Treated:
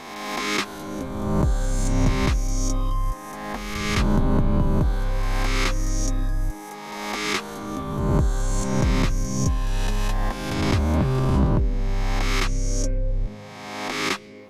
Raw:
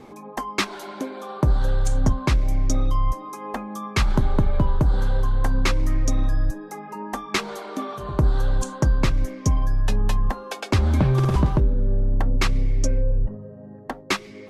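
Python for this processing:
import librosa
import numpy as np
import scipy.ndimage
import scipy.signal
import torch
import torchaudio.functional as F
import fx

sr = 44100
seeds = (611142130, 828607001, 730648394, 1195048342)

y = fx.spec_swells(x, sr, rise_s=1.56)
y = F.gain(torch.from_numpy(y), -4.5).numpy()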